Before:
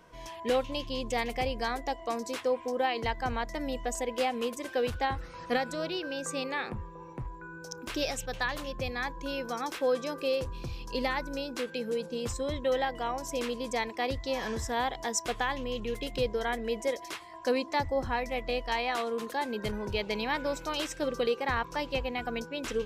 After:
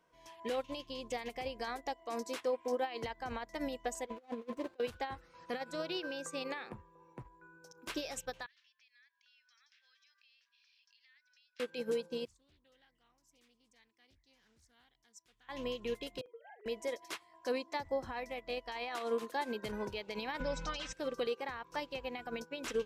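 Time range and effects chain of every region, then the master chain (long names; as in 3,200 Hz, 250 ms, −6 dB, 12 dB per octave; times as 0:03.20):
0:04.06–0:04.80: running median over 25 samples + low-pass filter 3,900 Hz 6 dB per octave + compressor whose output falls as the input rises −37 dBFS, ratio −0.5
0:08.46–0:11.60: Chebyshev band-pass filter 1,700–5,500 Hz, order 3 + downward compressor 4 to 1, threshold −52 dBFS
0:12.25–0:15.49: guitar amp tone stack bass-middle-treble 6-0-2 + highs frequency-modulated by the lows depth 0.57 ms
0:16.21–0:16.66: three sine waves on the formant tracks + downward compressor 5 to 1, threshold −41 dBFS + double-tracking delay 50 ms −8 dB
0:20.40–0:20.93: low-pass filter 6,500 Hz 24 dB per octave + low shelf with overshoot 210 Hz +13 dB, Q 3 + comb filter 3.9 ms, depth 88%
whole clip: low-shelf EQ 130 Hz −11 dB; brickwall limiter −29 dBFS; expander for the loud parts 2.5 to 1, over −46 dBFS; level +4 dB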